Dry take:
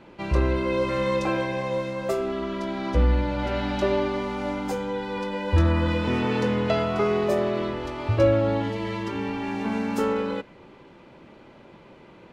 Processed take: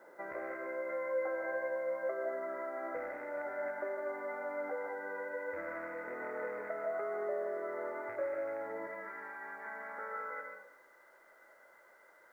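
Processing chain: rattling part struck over -24 dBFS, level -15 dBFS; HPF 580 Hz 12 dB/oct, from 8.87 s 1300 Hz; compressor, threshold -35 dBFS, peak gain reduction 15 dB; rippled Chebyshev low-pass 2100 Hz, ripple 9 dB; added noise white -80 dBFS; reverb RT60 0.55 s, pre-delay 0.11 s, DRR 2.5 dB; gain +1 dB

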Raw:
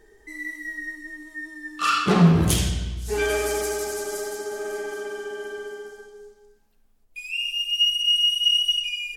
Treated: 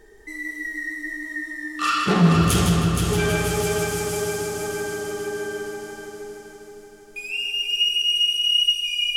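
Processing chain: in parallel at 0 dB: compressor, threshold -36 dBFS, peak gain reduction 23 dB; on the sum: multi-head echo 0.157 s, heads first and third, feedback 67%, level -6.5 dB; gain -2 dB

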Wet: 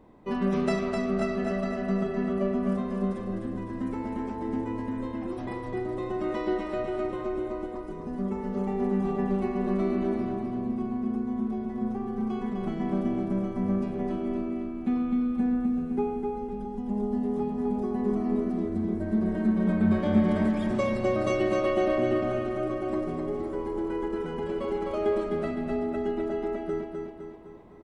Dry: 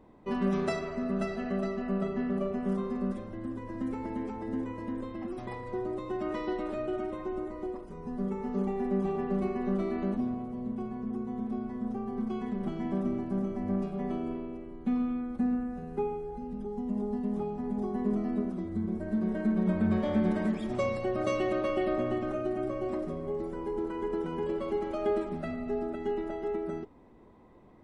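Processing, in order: feedback echo 0.255 s, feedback 50%, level -4.5 dB; gain +2 dB

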